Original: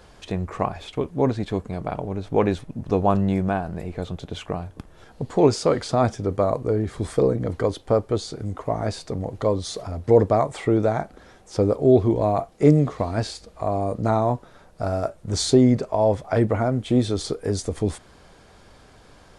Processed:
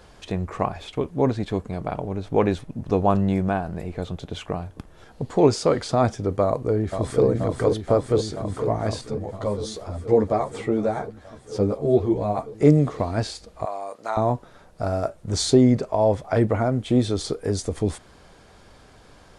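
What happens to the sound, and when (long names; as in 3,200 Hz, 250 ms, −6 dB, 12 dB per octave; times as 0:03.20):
0:06.44–0:07.25: delay throw 480 ms, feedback 85%, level −5.5 dB
0:09.01–0:12.55: string-ensemble chorus
0:13.65–0:14.17: high-pass filter 870 Hz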